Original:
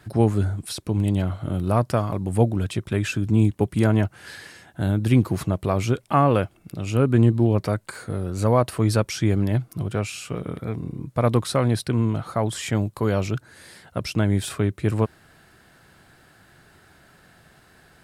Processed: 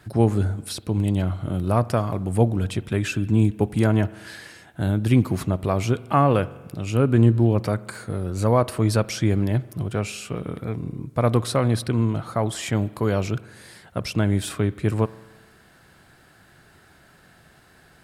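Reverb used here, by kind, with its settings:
spring reverb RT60 1.3 s, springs 43 ms, chirp 35 ms, DRR 18 dB

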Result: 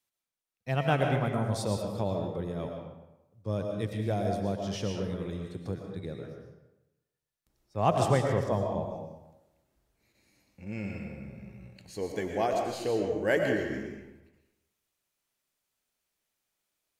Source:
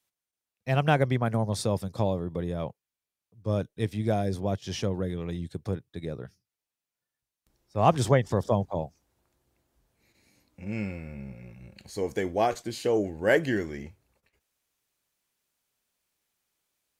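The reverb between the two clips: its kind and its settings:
comb and all-pass reverb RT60 0.97 s, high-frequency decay 0.75×, pre-delay 75 ms, DRR 2 dB
level −4.5 dB

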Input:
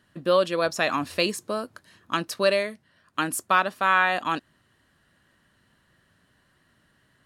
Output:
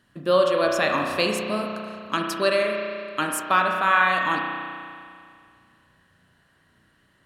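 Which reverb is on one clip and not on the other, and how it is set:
spring reverb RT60 2.3 s, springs 33 ms, chirp 60 ms, DRR 1 dB

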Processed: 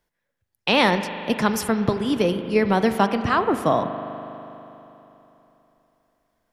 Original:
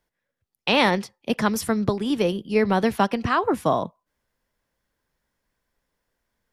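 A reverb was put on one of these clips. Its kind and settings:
spring reverb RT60 3.3 s, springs 40 ms, chirp 55 ms, DRR 9 dB
level +1 dB

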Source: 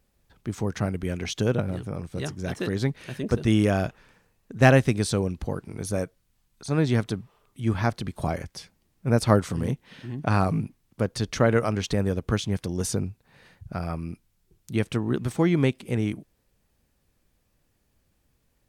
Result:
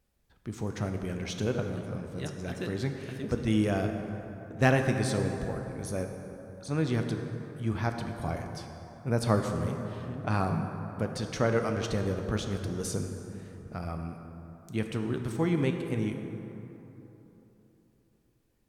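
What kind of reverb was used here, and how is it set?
dense smooth reverb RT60 3.5 s, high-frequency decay 0.45×, DRR 4 dB
level −6.5 dB

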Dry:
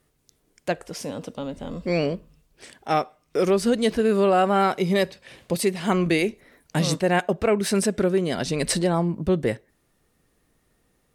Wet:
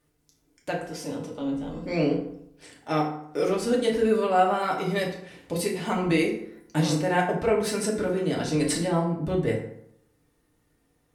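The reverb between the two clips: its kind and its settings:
feedback delay network reverb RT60 0.72 s, low-frequency decay 1.1×, high-frequency decay 0.6×, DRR −2.5 dB
level −7 dB

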